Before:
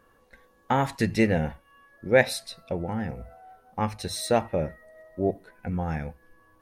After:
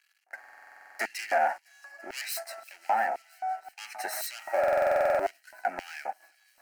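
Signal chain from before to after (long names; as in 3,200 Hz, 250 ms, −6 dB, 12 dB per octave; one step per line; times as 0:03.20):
phase distortion by the signal itself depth 0.47 ms
high-pass filter 160 Hz 24 dB per octave
parametric band 1,200 Hz +13 dB 1.9 octaves
brickwall limiter −11 dBFS, peak gain reduction 10 dB
leveller curve on the samples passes 3
auto-filter high-pass square 1.9 Hz 690–3,400 Hz
phaser with its sweep stopped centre 720 Hz, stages 8
on a send: delay with a high-pass on its return 336 ms, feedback 79%, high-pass 3,700 Hz, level −22 dB
on the sum: buffer that repeats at 0:00.39/0:04.59, samples 2,048, times 12
level −8.5 dB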